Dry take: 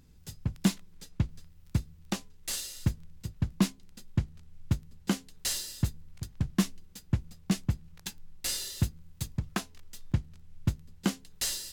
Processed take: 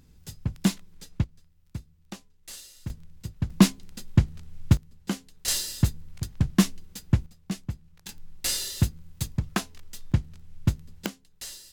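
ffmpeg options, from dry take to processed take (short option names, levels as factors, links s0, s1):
-af "asetnsamples=n=441:p=0,asendcmd='1.24 volume volume -8dB;2.9 volume volume 1.5dB;3.5 volume volume 9dB;4.77 volume volume -1dB;5.48 volume volume 6.5dB;7.26 volume volume -4dB;8.09 volume volume 5dB;11.06 volume volume -8dB',volume=1.33"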